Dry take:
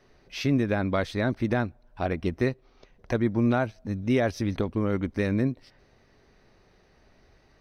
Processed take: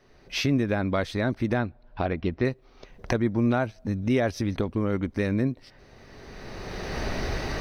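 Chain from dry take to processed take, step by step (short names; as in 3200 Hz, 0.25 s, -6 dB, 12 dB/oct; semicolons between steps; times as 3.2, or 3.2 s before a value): recorder AGC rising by 20 dB/s; 1.58–2.45 steep low-pass 4900 Hz 36 dB/oct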